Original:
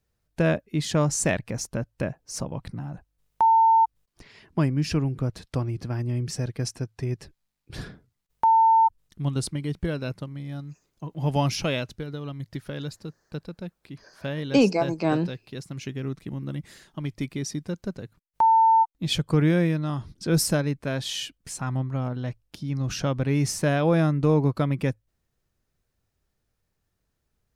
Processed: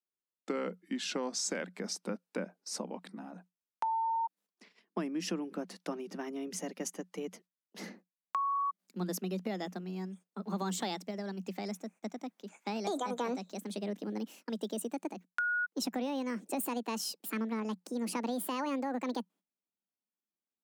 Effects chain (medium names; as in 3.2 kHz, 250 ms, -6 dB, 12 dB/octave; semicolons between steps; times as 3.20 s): gliding tape speed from 79% -> 188%; gate -49 dBFS, range -18 dB; Chebyshev high-pass 180 Hz, order 8; peak limiter -17.5 dBFS, peak gain reduction 7.5 dB; compression, threshold -27 dBFS, peak gain reduction 7 dB; trim -4 dB